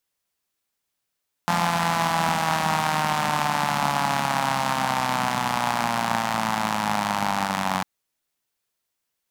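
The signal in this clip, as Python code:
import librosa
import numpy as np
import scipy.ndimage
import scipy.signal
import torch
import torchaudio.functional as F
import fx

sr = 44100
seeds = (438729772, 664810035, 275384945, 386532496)

y = fx.engine_four_rev(sr, seeds[0], length_s=6.35, rpm=5200, resonances_hz=(200.0, 840.0), end_rpm=2800)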